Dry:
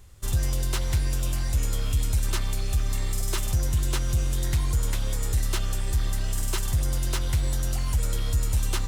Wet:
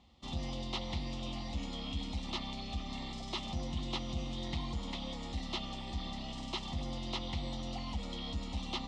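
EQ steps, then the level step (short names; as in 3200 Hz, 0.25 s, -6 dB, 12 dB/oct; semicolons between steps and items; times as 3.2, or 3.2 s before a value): speaker cabinet 140–3600 Hz, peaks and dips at 160 Hz -5 dB, 320 Hz -6 dB, 560 Hz -4 dB, 1000 Hz -6 dB, 1500 Hz -4 dB, 2500 Hz -6 dB; bell 610 Hz -7.5 dB 0.24 oct; fixed phaser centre 420 Hz, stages 6; +4.0 dB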